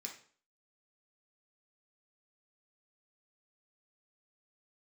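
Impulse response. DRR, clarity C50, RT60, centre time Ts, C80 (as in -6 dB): 0.0 dB, 8.0 dB, 0.45 s, 19 ms, 13.0 dB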